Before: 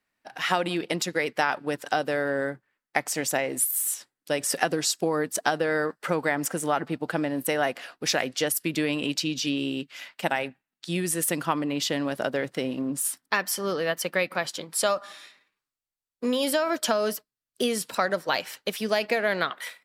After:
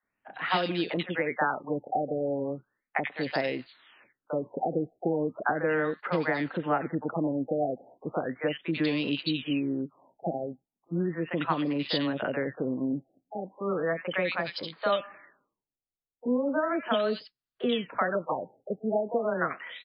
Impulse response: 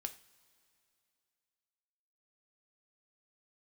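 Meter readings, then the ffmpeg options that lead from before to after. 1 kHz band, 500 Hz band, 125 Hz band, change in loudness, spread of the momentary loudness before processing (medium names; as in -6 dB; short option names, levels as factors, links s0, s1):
-2.5 dB, -2.0 dB, 0.0 dB, -3.5 dB, 6 LU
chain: -filter_complex "[0:a]acrossover=split=670|2200[s0][s1][s2];[s0]adelay=30[s3];[s2]adelay=90[s4];[s3][s1][s4]amix=inputs=3:normalize=0,afftfilt=real='re*lt(b*sr/1024,790*pow(5300/790,0.5+0.5*sin(2*PI*0.36*pts/sr)))':imag='im*lt(b*sr/1024,790*pow(5300/790,0.5+0.5*sin(2*PI*0.36*pts/sr)))':win_size=1024:overlap=0.75"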